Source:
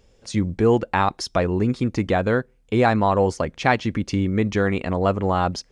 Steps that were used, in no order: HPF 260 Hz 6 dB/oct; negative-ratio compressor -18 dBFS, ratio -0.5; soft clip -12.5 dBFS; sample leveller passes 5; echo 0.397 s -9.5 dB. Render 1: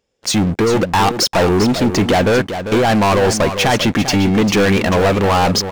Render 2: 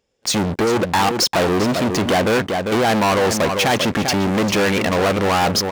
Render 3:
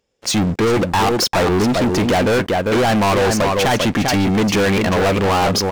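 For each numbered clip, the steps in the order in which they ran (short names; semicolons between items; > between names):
negative-ratio compressor > soft clip > HPF > sample leveller > echo; negative-ratio compressor > sample leveller > echo > soft clip > HPF; HPF > negative-ratio compressor > echo > soft clip > sample leveller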